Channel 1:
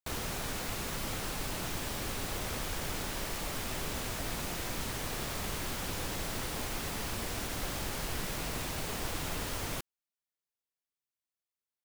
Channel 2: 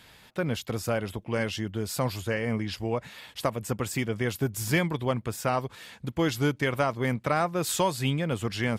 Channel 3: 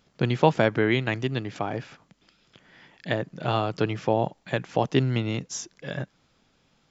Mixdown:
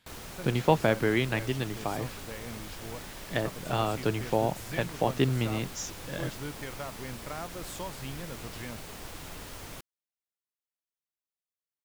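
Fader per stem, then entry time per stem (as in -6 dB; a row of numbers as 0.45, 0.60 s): -6.5, -14.0, -3.5 dB; 0.00, 0.00, 0.25 s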